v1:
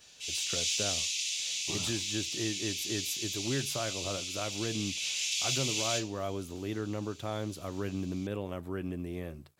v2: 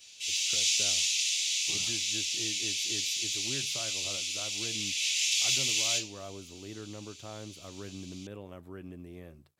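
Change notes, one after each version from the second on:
speech -8.0 dB; background +4.5 dB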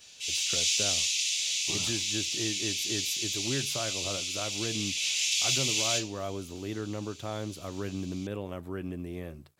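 speech +8.0 dB

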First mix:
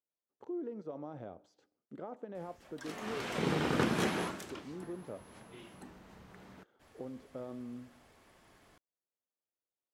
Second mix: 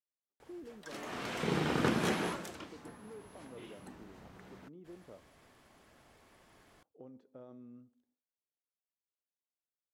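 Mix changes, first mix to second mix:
speech -8.5 dB; background: entry -1.95 s

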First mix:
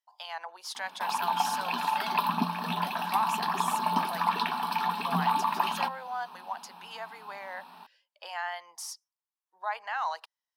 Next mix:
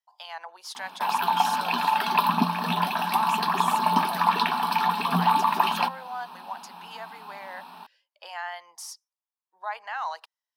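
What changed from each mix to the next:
background +5.5 dB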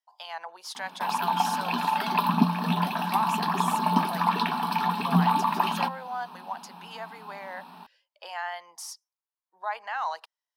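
background -4.0 dB; master: add bass shelf 300 Hz +11.5 dB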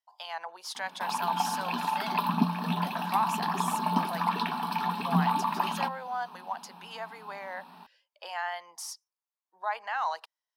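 background -4.0 dB

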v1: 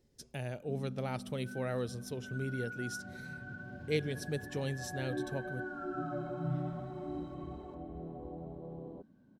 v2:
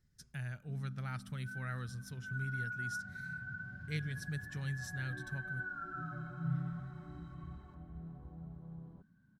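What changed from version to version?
master: add FFT filter 170 Hz 0 dB, 270 Hz -14 dB, 530 Hz -20 dB, 910 Hz -10 dB, 1.5 kHz +4 dB, 2.7 kHz -8 dB, 4.7 kHz -5 dB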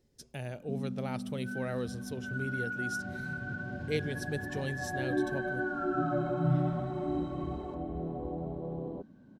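background +7.5 dB; master: remove FFT filter 170 Hz 0 dB, 270 Hz -14 dB, 530 Hz -20 dB, 910 Hz -10 dB, 1.5 kHz +4 dB, 2.7 kHz -8 dB, 4.7 kHz -5 dB

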